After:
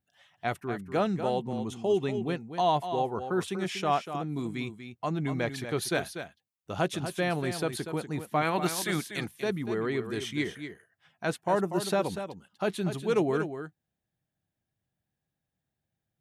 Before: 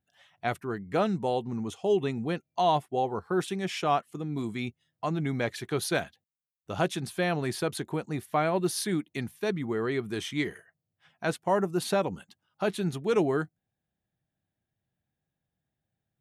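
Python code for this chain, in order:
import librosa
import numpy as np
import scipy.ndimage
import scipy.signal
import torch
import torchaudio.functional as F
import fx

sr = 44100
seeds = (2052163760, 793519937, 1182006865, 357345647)

y = fx.spec_clip(x, sr, under_db=15, at=(8.41, 9.26), fade=0.02)
y = y + 10.0 ** (-9.5 / 20.0) * np.pad(y, (int(241 * sr / 1000.0), 0))[:len(y)]
y = F.gain(torch.from_numpy(y), -1.0).numpy()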